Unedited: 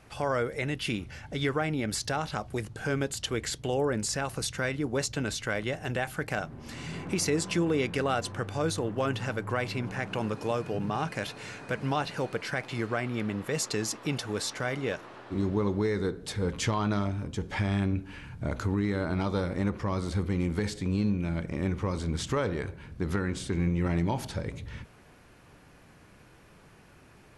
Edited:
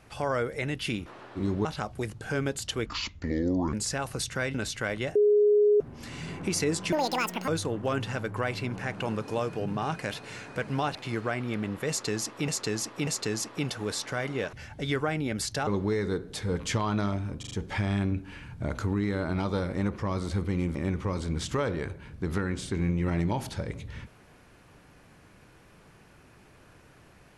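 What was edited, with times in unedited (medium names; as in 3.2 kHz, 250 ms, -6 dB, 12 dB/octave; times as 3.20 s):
1.06–2.20 s: swap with 15.01–15.60 s
3.41–3.96 s: speed 63%
4.77–5.20 s: delete
5.81–6.46 s: bleep 416 Hz -17.5 dBFS
7.58–8.61 s: speed 185%
12.08–12.61 s: delete
13.55–14.14 s: loop, 3 plays
17.32 s: stutter 0.04 s, 4 plays
20.56–21.53 s: delete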